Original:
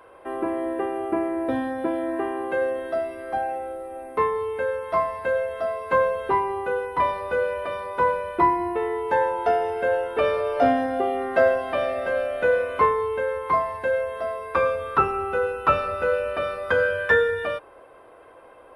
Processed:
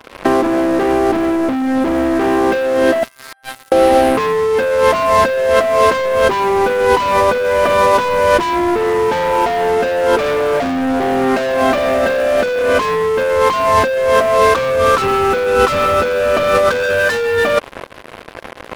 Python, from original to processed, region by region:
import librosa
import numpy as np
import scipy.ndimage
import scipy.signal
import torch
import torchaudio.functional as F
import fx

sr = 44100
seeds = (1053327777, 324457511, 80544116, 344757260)

y = fx.chain(x, sr, fx.highpass(hz=1400.0, slope=24),
    fx.peak_eq(hz=2500.0, db=-9.5, octaves=0.83),
    fx.over_compress(threshold_db=-46.0, ratio=-0.5), at=(3.03, 3.72))
y = fx.peak_eq(y, sr, hz=230.0, db=11.0, octaves=0.55)
y = fx.leveller(y, sr, passes=5)
y = fx.over_compress(y, sr, threshold_db=-16.0, ratio=-1.0)
y = y * 10.0 ** (2.0 / 20.0)